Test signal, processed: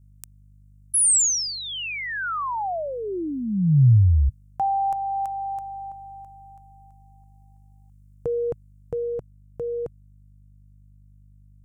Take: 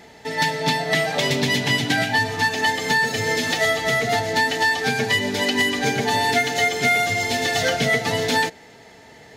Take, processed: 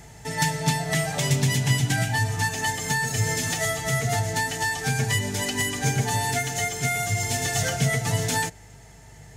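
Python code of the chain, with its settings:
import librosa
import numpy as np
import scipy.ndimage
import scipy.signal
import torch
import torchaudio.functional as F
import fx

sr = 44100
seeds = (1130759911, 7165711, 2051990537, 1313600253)

y = fx.rider(x, sr, range_db=3, speed_s=0.5)
y = fx.add_hum(y, sr, base_hz=50, snr_db=32)
y = fx.graphic_eq(y, sr, hz=(125, 250, 500, 1000, 2000, 4000, 8000), db=(8, -9, -9, -4, -6, -11, 7))
y = y * 10.0 ** (1.5 / 20.0)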